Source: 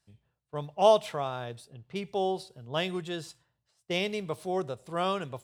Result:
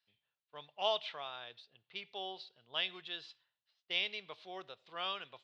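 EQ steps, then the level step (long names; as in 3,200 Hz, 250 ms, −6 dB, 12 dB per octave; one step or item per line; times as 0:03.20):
resonant band-pass 3,700 Hz, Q 1.9
high-frequency loss of the air 260 metres
+7.0 dB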